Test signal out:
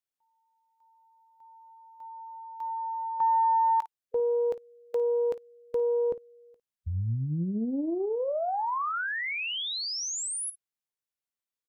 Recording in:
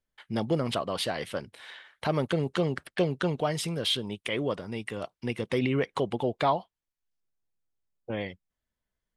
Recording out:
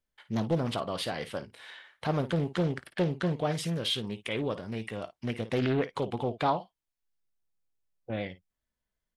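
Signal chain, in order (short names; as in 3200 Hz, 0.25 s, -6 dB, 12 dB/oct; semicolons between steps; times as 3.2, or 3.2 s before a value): early reflections 18 ms -17 dB, 54 ms -15.5 dB; harmonic-percussive split percussive -4 dB; Doppler distortion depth 0.42 ms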